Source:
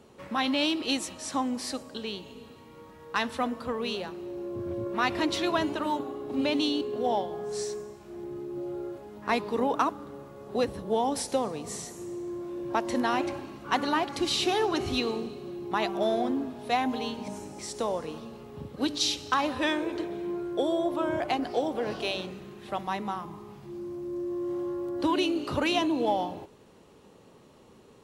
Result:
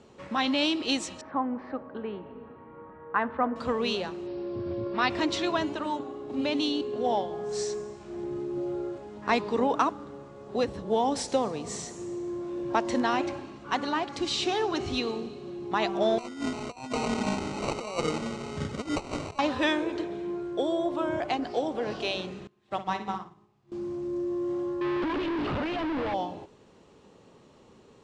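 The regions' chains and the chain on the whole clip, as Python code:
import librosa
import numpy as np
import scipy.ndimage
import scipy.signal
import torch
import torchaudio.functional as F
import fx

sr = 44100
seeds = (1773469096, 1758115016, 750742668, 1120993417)

y = fx.chain(x, sr, fx.lowpass(hz=1600.0, slope=24),
    fx.tilt_eq(slope=1.5), at=(1.21, 3.56))
y = fx.chain(y, sr, fx.high_shelf(hz=6800.0, db=9.5),
    fx.resample_bad(factor=4, down='none', up='filtered'), at=(4.27, 5.1))
y = fx.chain(y, sr, fx.hum_notches(base_hz=60, count=7),
    fx.sample_hold(seeds[0], rate_hz=1700.0, jitter_pct=0),
    fx.over_compress(threshold_db=-34.0, ratio=-0.5), at=(16.18, 19.39))
y = fx.chain(y, sr, fx.room_flutter(wall_m=10.1, rt60_s=0.56),
    fx.upward_expand(threshold_db=-45.0, expansion=2.5), at=(22.47, 23.72))
y = fx.chain(y, sr, fx.clip_1bit(),
    fx.air_absorb(metres=390.0), at=(24.81, 26.14))
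y = scipy.signal.sosfilt(scipy.signal.butter(6, 8300.0, 'lowpass', fs=sr, output='sos'), y)
y = fx.rider(y, sr, range_db=5, speed_s=2.0)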